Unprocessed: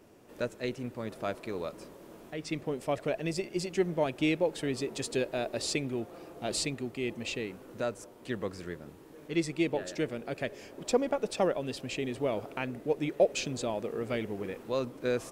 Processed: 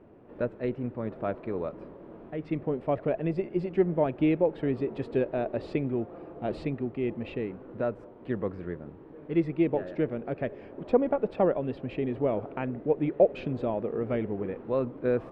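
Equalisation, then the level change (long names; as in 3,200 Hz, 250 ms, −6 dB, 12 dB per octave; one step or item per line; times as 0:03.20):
high-frequency loss of the air 460 metres
high-shelf EQ 2,300 Hz −11 dB
+5.5 dB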